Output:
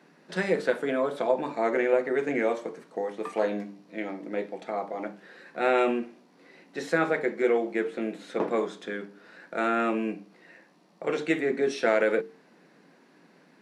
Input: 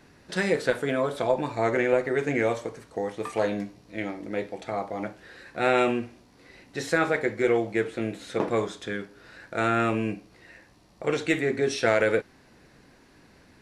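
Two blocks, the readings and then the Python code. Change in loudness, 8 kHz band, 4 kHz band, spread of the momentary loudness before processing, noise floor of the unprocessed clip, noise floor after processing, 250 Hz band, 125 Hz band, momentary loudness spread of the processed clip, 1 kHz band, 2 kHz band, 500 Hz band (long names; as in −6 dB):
−1.0 dB, can't be measured, −5.0 dB, 12 LU, −57 dBFS, −59 dBFS, −1.5 dB, −9.0 dB, 13 LU, −1.5 dB, −2.5 dB, −0.5 dB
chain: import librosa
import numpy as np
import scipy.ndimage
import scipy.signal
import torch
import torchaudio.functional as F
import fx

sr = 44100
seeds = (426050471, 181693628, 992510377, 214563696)

y = scipy.signal.sosfilt(scipy.signal.ellip(4, 1.0, 40, 160.0, 'highpass', fs=sr, output='sos'), x)
y = fx.high_shelf(y, sr, hz=3600.0, db=-8.0)
y = fx.hum_notches(y, sr, base_hz=50, count=9)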